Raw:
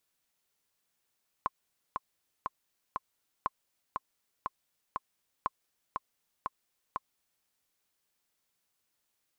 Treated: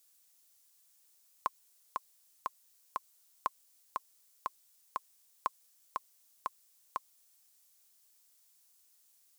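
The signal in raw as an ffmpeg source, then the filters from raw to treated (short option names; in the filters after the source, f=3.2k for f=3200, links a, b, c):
-f lavfi -i "aevalsrc='pow(10,(-16-4*gte(mod(t,4*60/120),60/120))/20)*sin(2*PI*1060*mod(t,60/120))*exp(-6.91*mod(t,60/120)/0.03)':d=6:s=44100"
-af "bass=f=250:g=-12,treble=f=4k:g=14"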